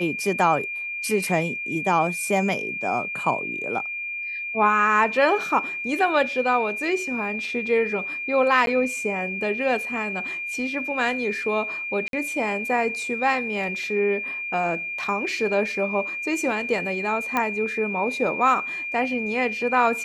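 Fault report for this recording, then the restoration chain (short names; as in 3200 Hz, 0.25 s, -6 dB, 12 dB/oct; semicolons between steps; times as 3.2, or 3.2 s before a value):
tone 2400 Hz -28 dBFS
8.66–8.67 gap 12 ms
12.08–12.13 gap 52 ms
17.37 pop -10 dBFS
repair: de-click; notch 2400 Hz, Q 30; interpolate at 8.66, 12 ms; interpolate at 12.08, 52 ms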